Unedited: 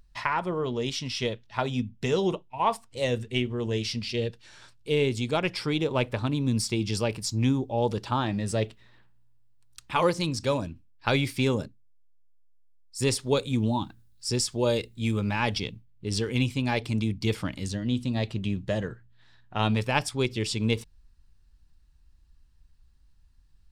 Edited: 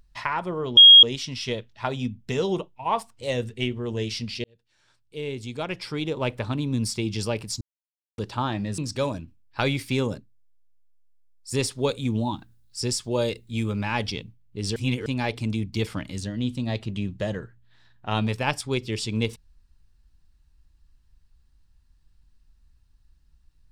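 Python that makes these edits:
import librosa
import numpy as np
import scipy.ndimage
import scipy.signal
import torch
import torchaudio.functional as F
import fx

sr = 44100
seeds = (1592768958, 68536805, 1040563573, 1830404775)

y = fx.edit(x, sr, fx.insert_tone(at_s=0.77, length_s=0.26, hz=3270.0, db=-6.0),
    fx.fade_in_span(start_s=4.18, length_s=1.98),
    fx.silence(start_s=7.35, length_s=0.57),
    fx.cut(start_s=8.52, length_s=1.74),
    fx.reverse_span(start_s=16.24, length_s=0.3), tone=tone)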